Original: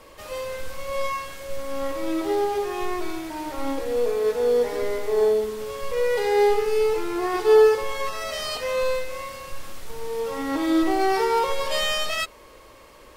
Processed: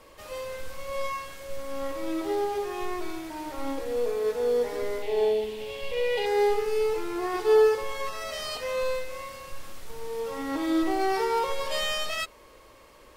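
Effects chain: 5.02–6.26 s: FFT filter 480 Hz 0 dB, 840 Hz +4 dB, 1.2 kHz -11 dB, 2.8 kHz +11 dB, 6 kHz -4 dB; trim -4.5 dB

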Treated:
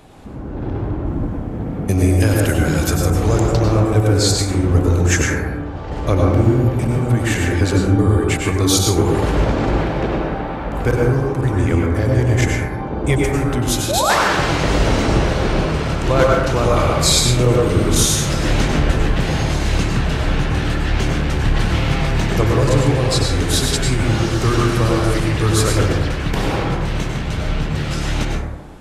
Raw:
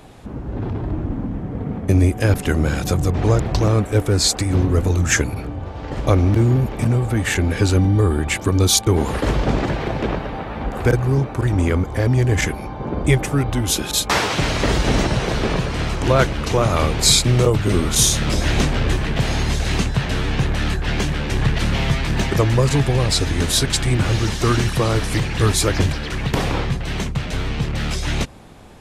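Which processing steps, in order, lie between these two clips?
1.06–3.47 s: treble shelf 4.8 kHz +9.5 dB; 13.89–14.15 s: painted sound rise 510–1900 Hz -18 dBFS; plate-style reverb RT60 1.1 s, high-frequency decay 0.3×, pre-delay 85 ms, DRR -1.5 dB; trim -2 dB

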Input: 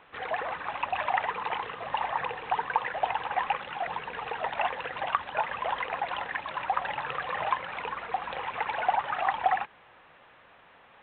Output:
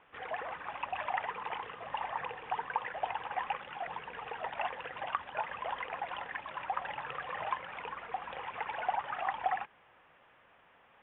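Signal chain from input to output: steep low-pass 3.5 kHz 72 dB/octave; trim -7 dB

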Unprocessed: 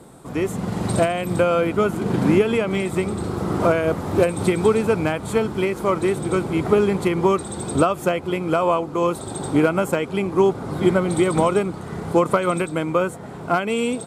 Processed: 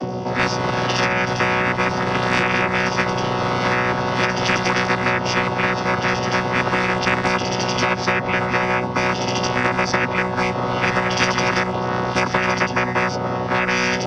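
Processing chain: vocoder on a held chord bare fifth, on B2; formant shift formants -5 st; spectrum-flattening compressor 10:1

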